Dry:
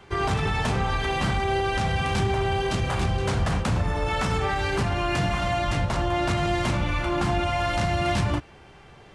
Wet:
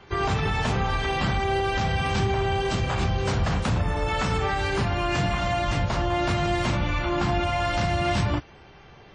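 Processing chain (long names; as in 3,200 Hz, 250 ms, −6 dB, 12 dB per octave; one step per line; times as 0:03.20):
WMA 32 kbit/s 22,050 Hz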